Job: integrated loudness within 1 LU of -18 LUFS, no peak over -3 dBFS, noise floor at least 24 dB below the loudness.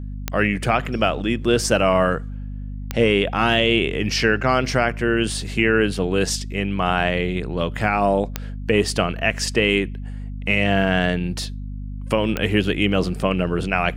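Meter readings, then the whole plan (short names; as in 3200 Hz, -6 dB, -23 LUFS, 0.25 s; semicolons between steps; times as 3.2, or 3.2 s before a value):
clicks 4; hum 50 Hz; harmonics up to 250 Hz; hum level -28 dBFS; loudness -20.5 LUFS; peak -4.0 dBFS; loudness target -18.0 LUFS
-> de-click; de-hum 50 Hz, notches 5; gain +2.5 dB; limiter -3 dBFS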